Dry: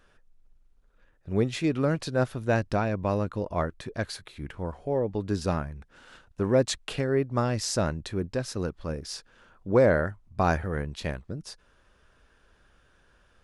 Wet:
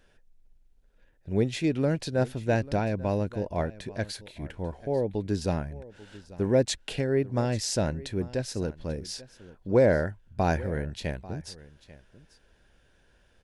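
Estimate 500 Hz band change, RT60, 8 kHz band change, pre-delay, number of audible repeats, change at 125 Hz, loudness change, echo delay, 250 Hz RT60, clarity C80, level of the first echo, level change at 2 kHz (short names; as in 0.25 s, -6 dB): -0.5 dB, none, 0.0 dB, none, 1, 0.0 dB, -0.5 dB, 0.841 s, none, none, -19.0 dB, -2.5 dB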